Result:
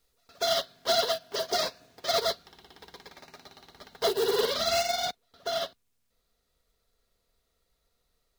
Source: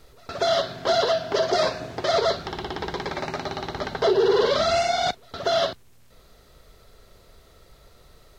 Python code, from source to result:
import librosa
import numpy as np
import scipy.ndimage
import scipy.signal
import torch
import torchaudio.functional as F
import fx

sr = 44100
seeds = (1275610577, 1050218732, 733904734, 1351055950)

y = x + 0.31 * np.pad(x, (int(4.2 * sr / 1000.0), 0))[:len(x)]
y = fx.quant_companded(y, sr, bits=6)
y = fx.high_shelf(y, sr, hz=2700.0, db=fx.steps((0.0, 12.0), (5.05, 7.0)))
y = fx.upward_expand(y, sr, threshold_db=-28.0, expansion=2.5)
y = y * 10.0 ** (-6.0 / 20.0)